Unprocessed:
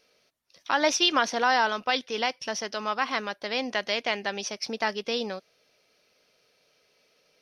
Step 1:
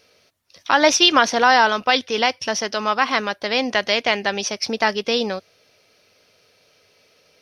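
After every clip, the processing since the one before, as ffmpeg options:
ffmpeg -i in.wav -af "equalizer=frequency=95:width=3.5:gain=12.5,volume=8.5dB" out.wav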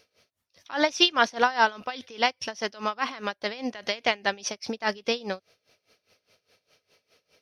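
ffmpeg -i in.wav -af "aeval=exprs='val(0)*pow(10,-20*(0.5-0.5*cos(2*PI*4.9*n/s))/20)':channel_layout=same,volume=-3dB" out.wav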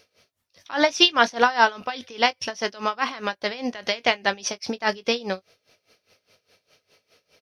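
ffmpeg -i in.wav -filter_complex "[0:a]asplit=2[link_01][link_02];[link_02]adelay=21,volume=-13.5dB[link_03];[link_01][link_03]amix=inputs=2:normalize=0,volume=3.5dB" out.wav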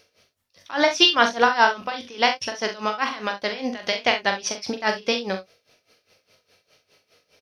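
ffmpeg -i in.wav -af "aecho=1:1:42|67:0.447|0.224" out.wav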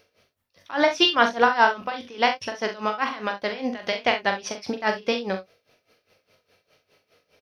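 ffmpeg -i in.wav -af "equalizer=frequency=6500:width_type=o:width=2:gain=-7.5" out.wav

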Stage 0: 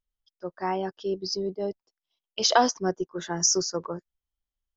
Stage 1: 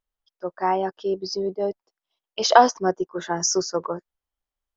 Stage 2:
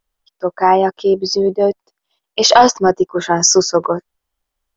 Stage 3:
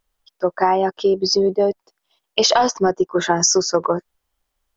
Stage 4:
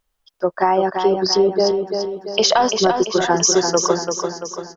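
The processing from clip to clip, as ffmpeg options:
ffmpeg -i in.wav -af "equalizer=frequency=820:width_type=o:width=2.9:gain=9.5,volume=-2dB" out.wav
ffmpeg -i in.wav -af "apsyclip=12.5dB,volume=-1.5dB" out.wav
ffmpeg -i in.wav -af "acompressor=threshold=-16dB:ratio=5,volume=2.5dB" out.wav
ffmpeg -i in.wav -af "aecho=1:1:340|680|1020|1360|1700|2040:0.501|0.251|0.125|0.0626|0.0313|0.0157" out.wav

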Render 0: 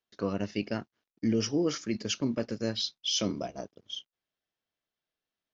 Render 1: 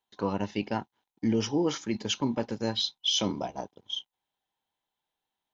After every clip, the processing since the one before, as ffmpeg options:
ffmpeg -i in.wav -af "superequalizer=9b=3.98:13b=1.58:14b=0.631,volume=1dB" out.wav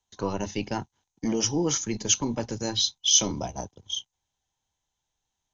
ffmpeg -i in.wav -filter_complex "[0:a]acrossover=split=110[link_01][link_02];[link_01]aeval=exprs='0.0178*sin(PI/2*5.01*val(0)/0.0178)':channel_layout=same[link_03];[link_03][link_02]amix=inputs=2:normalize=0,lowpass=frequency=6400:width_type=q:width=7.4" out.wav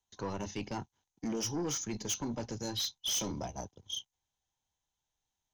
ffmpeg -i in.wav -af "asoftclip=type=tanh:threshold=-24dB,volume=-5.5dB" out.wav

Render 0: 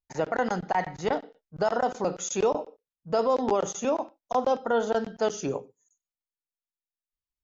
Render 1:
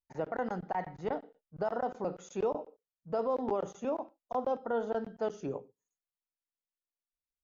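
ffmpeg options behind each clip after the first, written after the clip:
ffmpeg -i in.wav -af "lowpass=frequency=1200:poles=1,volume=-6.5dB" out.wav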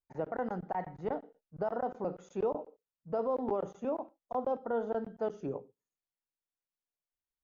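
ffmpeg -i in.wav -af "highshelf=frequency=2400:gain=-11.5" out.wav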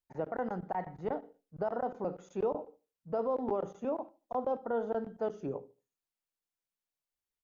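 ffmpeg -i in.wav -filter_complex "[0:a]asplit=2[link_01][link_02];[link_02]adelay=75,lowpass=frequency=980:poles=1,volume=-22dB,asplit=2[link_03][link_04];[link_04]adelay=75,lowpass=frequency=980:poles=1,volume=0.37,asplit=2[link_05][link_06];[link_06]adelay=75,lowpass=frequency=980:poles=1,volume=0.37[link_07];[link_01][link_03][link_05][link_07]amix=inputs=4:normalize=0" out.wav

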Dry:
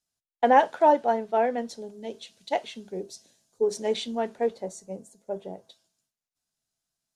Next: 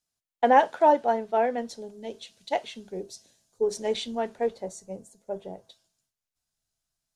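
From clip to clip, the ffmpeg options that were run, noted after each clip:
ffmpeg -i in.wav -af "asubboost=boost=3:cutoff=110" out.wav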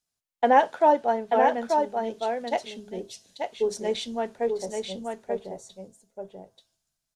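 ffmpeg -i in.wav -af "aecho=1:1:885:0.596" out.wav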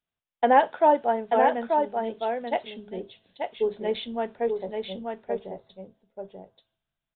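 ffmpeg -i in.wav -af "aresample=8000,aresample=44100" out.wav

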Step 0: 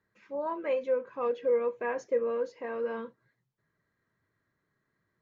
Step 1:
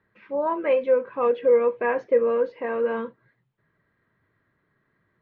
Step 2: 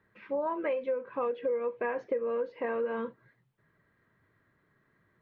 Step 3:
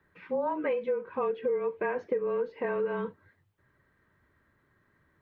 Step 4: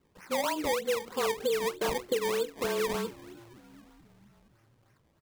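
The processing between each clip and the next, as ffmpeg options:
ffmpeg -i in.wav -af "lowpass=frequency=3400:width=0.5412,lowpass=frequency=3400:width=1.3066,volume=8.5dB" out.wav
ffmpeg -i in.wav -af "acompressor=threshold=-29dB:ratio=6" out.wav
ffmpeg -i in.wav -af "afreqshift=-30,volume=1.5dB" out.wav
ffmpeg -i in.wav -filter_complex "[0:a]asplit=5[link_01][link_02][link_03][link_04][link_05];[link_02]adelay=471,afreqshift=-80,volume=-20dB[link_06];[link_03]adelay=942,afreqshift=-160,volume=-25.4dB[link_07];[link_04]adelay=1413,afreqshift=-240,volume=-30.7dB[link_08];[link_05]adelay=1884,afreqshift=-320,volume=-36.1dB[link_09];[link_01][link_06][link_07][link_08][link_09]amix=inputs=5:normalize=0,acrusher=samples=22:mix=1:aa=0.000001:lfo=1:lforange=22:lforate=3.2" out.wav

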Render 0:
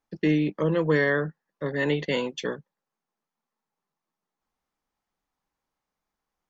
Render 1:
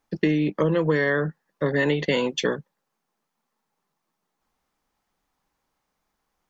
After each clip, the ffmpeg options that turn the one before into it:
ffmpeg -i in.wav -af "acompressor=threshold=-26dB:ratio=6,volume=8dB" out.wav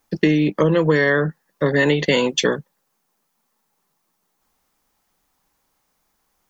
ffmpeg -i in.wav -af "highshelf=frequency=6500:gain=10.5,volume=5dB" out.wav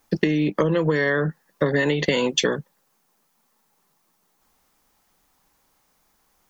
ffmpeg -i in.wav -af "acompressor=threshold=-20dB:ratio=12,volume=3.5dB" out.wav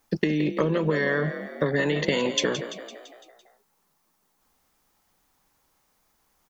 ffmpeg -i in.wav -filter_complex "[0:a]asplit=7[link_01][link_02][link_03][link_04][link_05][link_06][link_07];[link_02]adelay=169,afreqshift=44,volume=-11dB[link_08];[link_03]adelay=338,afreqshift=88,volume=-15.9dB[link_09];[link_04]adelay=507,afreqshift=132,volume=-20.8dB[link_10];[link_05]adelay=676,afreqshift=176,volume=-25.6dB[link_11];[link_06]adelay=845,afreqshift=220,volume=-30.5dB[link_12];[link_07]adelay=1014,afreqshift=264,volume=-35.4dB[link_13];[link_01][link_08][link_09][link_10][link_11][link_12][link_13]amix=inputs=7:normalize=0,volume=-3.5dB" out.wav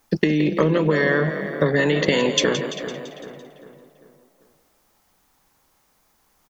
ffmpeg -i in.wav -filter_complex "[0:a]asplit=2[link_01][link_02];[link_02]adelay=394,lowpass=frequency=2200:poles=1,volume=-11.5dB,asplit=2[link_03][link_04];[link_04]adelay=394,lowpass=frequency=2200:poles=1,volume=0.47,asplit=2[link_05][link_06];[link_06]adelay=394,lowpass=frequency=2200:poles=1,volume=0.47,asplit=2[link_07][link_08];[link_08]adelay=394,lowpass=frequency=2200:poles=1,volume=0.47,asplit=2[link_09][link_10];[link_10]adelay=394,lowpass=frequency=2200:poles=1,volume=0.47[link_11];[link_01][link_03][link_05][link_07][link_09][link_11]amix=inputs=6:normalize=0,volume=5dB" out.wav

